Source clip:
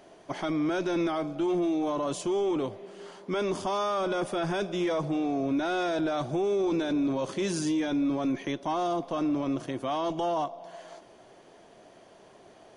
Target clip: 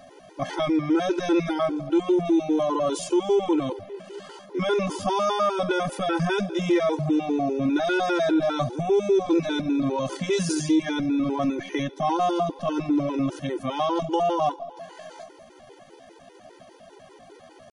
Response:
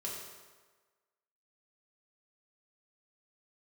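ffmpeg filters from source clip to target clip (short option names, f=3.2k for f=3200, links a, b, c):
-af "atempo=0.72,afftfilt=real='re*gt(sin(2*PI*5*pts/sr)*(1-2*mod(floor(b*sr/1024/260),2)),0)':imag='im*gt(sin(2*PI*5*pts/sr)*(1-2*mod(floor(b*sr/1024/260),2)),0)':win_size=1024:overlap=0.75,volume=8.5dB"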